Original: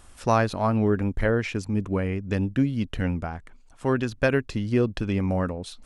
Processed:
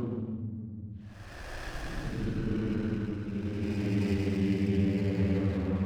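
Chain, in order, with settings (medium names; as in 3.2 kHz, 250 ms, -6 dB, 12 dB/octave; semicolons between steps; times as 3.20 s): low-pass that closes with the level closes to 2.2 kHz, closed at -16.5 dBFS; Paulstretch 17×, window 0.10 s, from 4.87 s; sliding maximum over 9 samples; trim -4.5 dB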